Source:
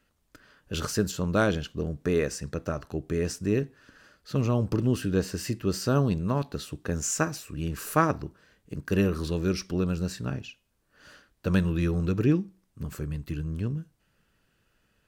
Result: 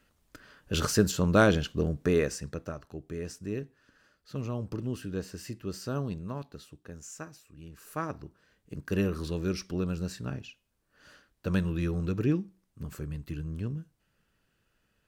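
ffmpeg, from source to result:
-af "volume=5.31,afade=t=out:st=1.83:d=0.96:silence=0.266073,afade=t=out:st=6.13:d=0.86:silence=0.446684,afade=t=in:st=7.79:d=0.96:silence=0.251189"

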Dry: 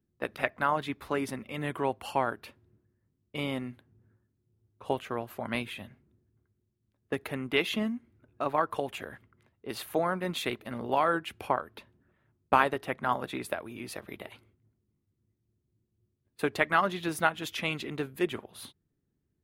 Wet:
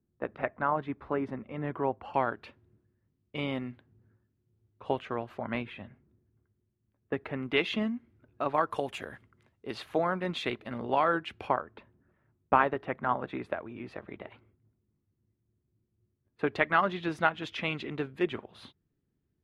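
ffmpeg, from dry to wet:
-af "asetnsamples=n=441:p=0,asendcmd='2.14 lowpass f 3700;5.38 lowpass f 2200;7.43 lowpass f 4200;8.54 lowpass f 9200;9.7 lowpass f 4400;11.57 lowpass f 2000;16.47 lowpass f 3500',lowpass=1400"

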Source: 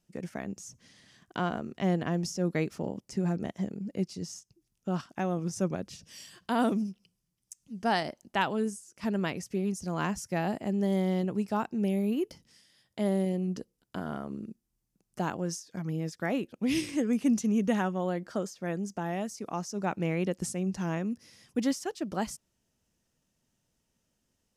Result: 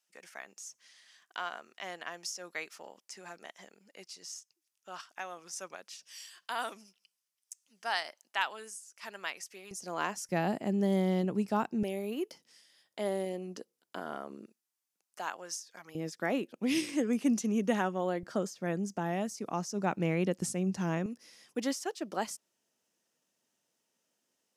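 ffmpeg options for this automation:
-af "asetnsamples=n=441:p=0,asendcmd='9.71 highpass f 440;10.29 highpass f 140;11.83 highpass f 400;14.46 highpass f 890;15.95 highpass f 240;18.23 highpass f 110;21.06 highpass f 350',highpass=1100"

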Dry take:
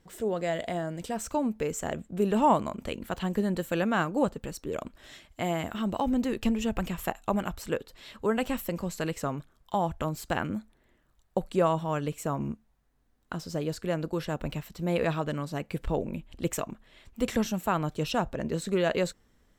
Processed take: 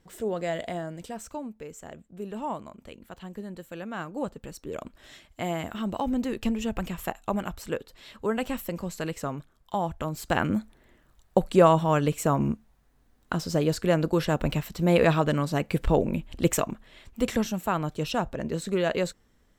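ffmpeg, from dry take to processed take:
-af "volume=7.5,afade=t=out:st=0.58:d=0.96:silence=0.298538,afade=t=in:st=3.81:d=1.2:silence=0.316228,afade=t=in:st=10.09:d=0.47:silence=0.421697,afade=t=out:st=16.46:d=1:silence=0.473151"

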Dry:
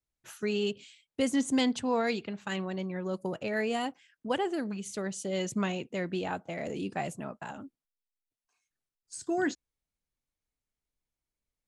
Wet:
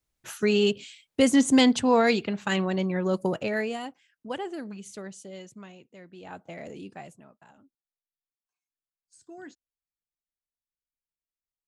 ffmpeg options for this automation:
-af "volume=10,afade=t=out:st=3.24:d=0.54:silence=0.266073,afade=t=out:st=4.91:d=0.62:silence=0.266073,afade=t=in:st=6.16:d=0.33:silence=0.251189,afade=t=out:st=6.49:d=0.79:silence=0.251189"

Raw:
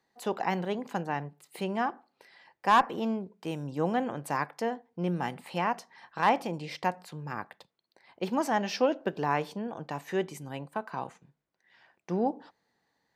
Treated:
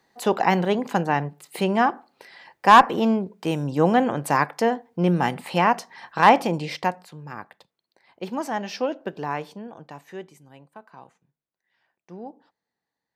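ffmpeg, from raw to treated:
-af "volume=3.16,afade=t=out:st=6.55:d=0.53:silence=0.316228,afade=t=out:st=9.25:d=1.14:silence=0.316228"

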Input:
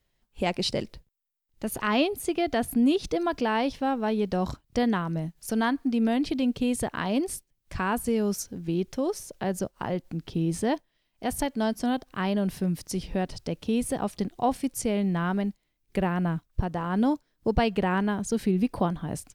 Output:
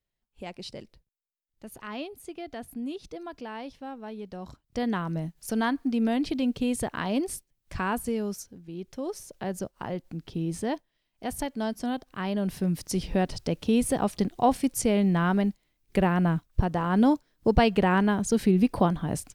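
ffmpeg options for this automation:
-af "volume=5.62,afade=t=in:st=4.5:d=0.56:silence=0.266073,afade=t=out:st=7.87:d=0.81:silence=0.251189,afade=t=in:st=8.68:d=0.54:silence=0.334965,afade=t=in:st=12.24:d=0.84:silence=0.473151"

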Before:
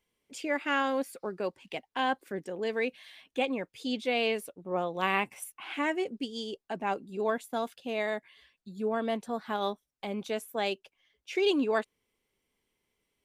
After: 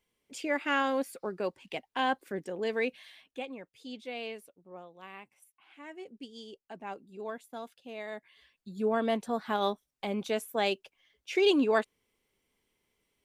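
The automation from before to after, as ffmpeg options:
-af "volume=11.9,afade=t=out:st=2.98:d=0.46:silence=0.298538,afade=t=out:st=4.24:d=0.72:silence=0.354813,afade=t=in:st=5.79:d=0.46:silence=0.316228,afade=t=in:st=8.06:d=0.79:silence=0.266073"

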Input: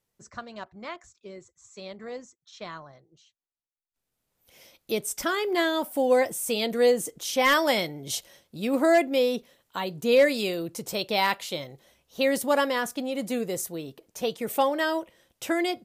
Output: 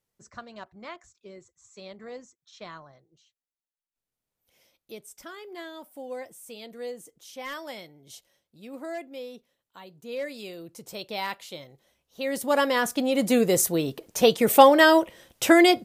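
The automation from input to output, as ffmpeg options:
-af "volume=13.3,afade=t=out:st=2.74:d=2.32:silence=0.237137,afade=t=in:st=10.07:d=0.96:silence=0.398107,afade=t=in:st=12.22:d=0.49:silence=0.316228,afade=t=in:st=12.71:d=1.02:silence=0.421697"

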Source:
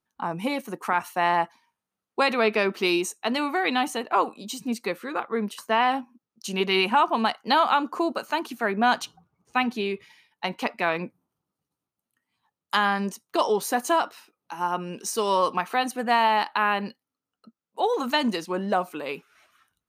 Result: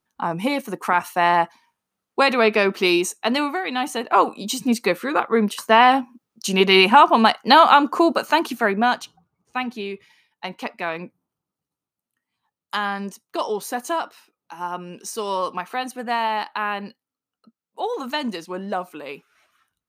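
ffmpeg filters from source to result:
-af "volume=7.08,afade=t=out:st=3.39:d=0.26:silence=0.375837,afade=t=in:st=3.65:d=0.79:silence=0.251189,afade=t=out:st=8.46:d=0.55:silence=0.298538"

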